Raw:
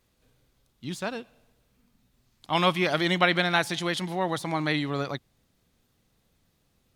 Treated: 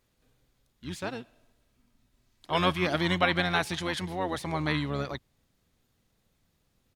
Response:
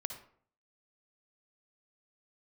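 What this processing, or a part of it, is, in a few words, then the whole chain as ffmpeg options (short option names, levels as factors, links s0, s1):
octave pedal: -filter_complex "[0:a]asplit=3[s0][s1][s2];[s0]afade=t=out:st=1.19:d=0.02[s3];[s1]aecho=1:1:3.1:0.4,afade=t=in:st=1.19:d=0.02,afade=t=out:st=2.59:d=0.02[s4];[s2]afade=t=in:st=2.59:d=0.02[s5];[s3][s4][s5]amix=inputs=3:normalize=0,asplit=2[s6][s7];[s7]asetrate=22050,aresample=44100,atempo=2,volume=0.447[s8];[s6][s8]amix=inputs=2:normalize=0,volume=0.668"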